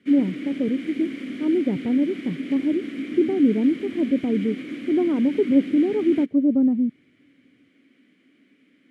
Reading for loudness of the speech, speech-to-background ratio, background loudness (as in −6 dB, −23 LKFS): −22.5 LKFS, 9.5 dB, −32.0 LKFS